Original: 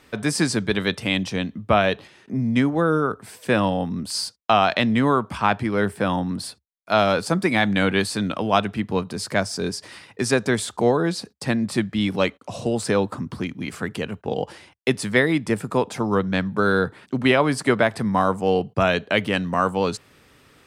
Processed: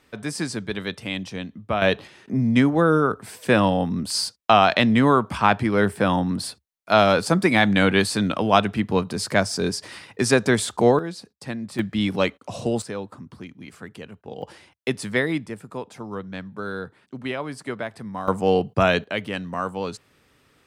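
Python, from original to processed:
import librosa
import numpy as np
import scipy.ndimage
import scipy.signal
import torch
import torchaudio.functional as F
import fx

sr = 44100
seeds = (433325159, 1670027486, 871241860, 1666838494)

y = fx.gain(x, sr, db=fx.steps((0.0, -6.5), (1.82, 2.0), (10.99, -8.5), (11.79, -0.5), (12.82, -11.0), (14.42, -4.0), (15.46, -11.5), (18.28, 1.0), (19.04, -6.5)))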